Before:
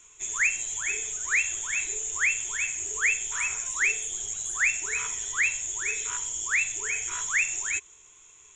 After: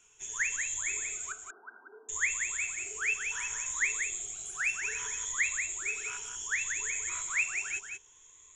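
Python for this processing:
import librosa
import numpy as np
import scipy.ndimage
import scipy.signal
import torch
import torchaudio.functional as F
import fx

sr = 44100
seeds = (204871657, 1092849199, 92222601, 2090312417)

y = fx.spec_ripple(x, sr, per_octave=1.1, drift_hz=0.65, depth_db=8)
y = fx.brickwall_bandpass(y, sr, low_hz=210.0, high_hz=1600.0, at=(1.32, 2.09))
y = y + 10.0 ** (-6.0 / 20.0) * np.pad(y, (int(183 * sr / 1000.0), 0))[:len(y)]
y = F.gain(torch.from_numpy(y), -7.0).numpy()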